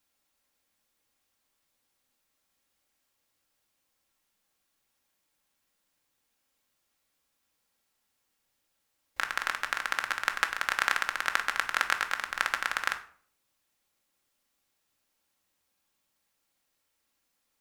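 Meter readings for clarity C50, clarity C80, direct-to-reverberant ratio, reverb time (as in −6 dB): 13.0 dB, 17.0 dB, 5.0 dB, 0.50 s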